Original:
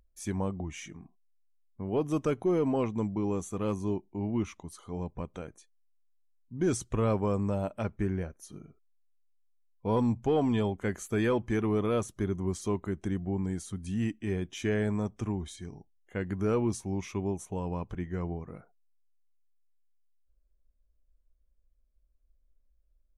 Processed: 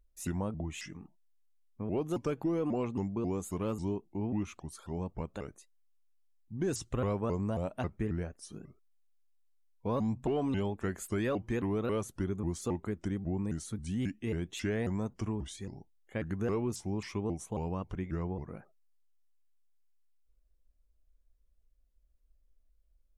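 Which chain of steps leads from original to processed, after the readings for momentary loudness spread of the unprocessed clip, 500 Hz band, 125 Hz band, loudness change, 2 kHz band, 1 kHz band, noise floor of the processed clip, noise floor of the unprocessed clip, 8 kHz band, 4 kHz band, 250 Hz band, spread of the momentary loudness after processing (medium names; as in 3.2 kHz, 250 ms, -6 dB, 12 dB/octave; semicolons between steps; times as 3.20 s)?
13 LU, -4.5 dB, -3.0 dB, -3.5 dB, -3.5 dB, -4.0 dB, -69 dBFS, -69 dBFS, -2.0 dB, -1.5 dB, -3.5 dB, 10 LU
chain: compression 2:1, threshold -32 dBFS, peak gain reduction 5.5 dB; vibrato with a chosen wave saw up 3.7 Hz, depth 250 cents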